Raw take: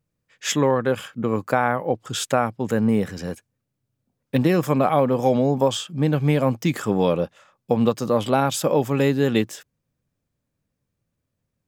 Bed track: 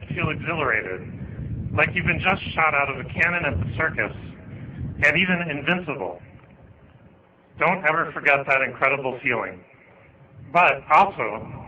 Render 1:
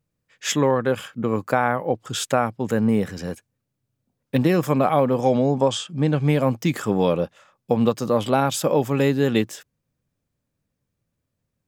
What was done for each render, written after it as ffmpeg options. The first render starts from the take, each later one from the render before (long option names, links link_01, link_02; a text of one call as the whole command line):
ffmpeg -i in.wav -filter_complex "[0:a]asettb=1/sr,asplit=3[link_01][link_02][link_03];[link_01]atrim=end=5.214[link_04];[link_02]atrim=start=5.21:end=6.29,asetpts=PTS-STARTPTS,afade=type=in:duration=0.004:curve=qsin,afade=type=out:start_time=1.076:duration=0.004:curve=qsin,lowpass=frequency=9600:width=0.5412,lowpass=frequency=9600:width=1.3066[link_05];[link_03]atrim=start=6.286[link_06];[link_04][link_05]acrossfade=duration=0.004:curve1=hsin:curve2=qsin[link_07];[link_07][link_06]acrossfade=duration=0.004:curve1=qsin:curve2=hsin" out.wav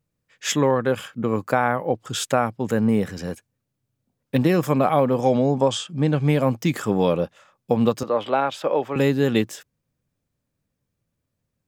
ffmpeg -i in.wav -filter_complex "[0:a]asettb=1/sr,asplit=3[link_01][link_02][link_03];[link_01]atrim=end=8.034[link_04];[link_02]atrim=start=8.03:end=8.96,asetpts=PTS-STARTPTS,afade=type=in:duration=0.004:curve=qsin,afade=type=out:start_time=0.926:duration=0.004:curve=qsin,acrossover=split=340 3800:gain=0.178 1 0.1[link_05][link_06][link_07];[link_05][link_06][link_07]amix=inputs=3:normalize=0[link_08];[link_03]atrim=start=8.956[link_09];[link_04][link_08]acrossfade=duration=0.004:curve1=hsin:curve2=qsin[link_10];[link_10][link_09]acrossfade=duration=0.004:curve1=qsin:curve2=hsin" out.wav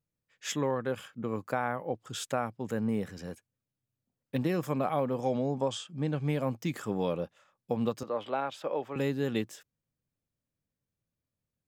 ffmpeg -i in.wav -af "volume=-11dB" out.wav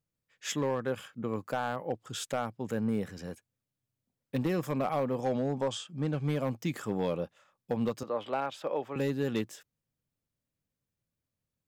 ffmpeg -i in.wav -af "asoftclip=type=hard:threshold=-22.5dB" out.wav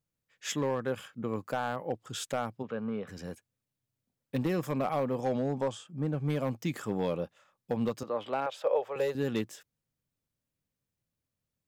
ffmpeg -i in.wav -filter_complex "[0:a]asplit=3[link_01][link_02][link_03];[link_01]afade=type=out:start_time=2.62:duration=0.02[link_04];[link_02]highpass=180,equalizer=frequency=190:width_type=q:width=4:gain=-5,equalizer=frequency=320:width_type=q:width=4:gain=-9,equalizer=frequency=850:width_type=q:width=4:gain=-4,equalizer=frequency=1200:width_type=q:width=4:gain=7,equalizer=frequency=1900:width_type=q:width=4:gain=-7,lowpass=frequency=3400:width=0.5412,lowpass=frequency=3400:width=1.3066,afade=type=in:start_time=2.62:duration=0.02,afade=type=out:start_time=3.07:duration=0.02[link_05];[link_03]afade=type=in:start_time=3.07:duration=0.02[link_06];[link_04][link_05][link_06]amix=inputs=3:normalize=0,asettb=1/sr,asplit=3[link_07][link_08][link_09];[link_07]atrim=end=5.714[link_10];[link_08]atrim=start=5.71:end=6.3,asetpts=PTS-STARTPTS,afade=type=in:duration=0.004:curve=qsin,afade=type=out:start_time=0.586:duration=0.004:curve=qsin,equalizer=frequency=4000:width=0.55:gain=-9[link_11];[link_09]atrim=start=6.296[link_12];[link_10][link_11]acrossfade=duration=0.004:curve1=hsin:curve2=qsin[link_13];[link_13][link_12]acrossfade=duration=0.004:curve1=qsin:curve2=hsin,asettb=1/sr,asplit=3[link_14][link_15][link_16];[link_14]atrim=end=8.464[link_17];[link_15]atrim=start=8.46:end=9.15,asetpts=PTS-STARTPTS,afade=type=in:duration=0.004:curve=qsin,afade=type=out:start_time=0.686:duration=0.004:curve=qsin,lowshelf=frequency=360:width_type=q:width=3:gain=-10[link_18];[link_16]atrim=start=9.146[link_19];[link_17][link_18]acrossfade=duration=0.004:curve1=hsin:curve2=qsin[link_20];[link_20][link_19]acrossfade=duration=0.004:curve1=qsin:curve2=hsin" out.wav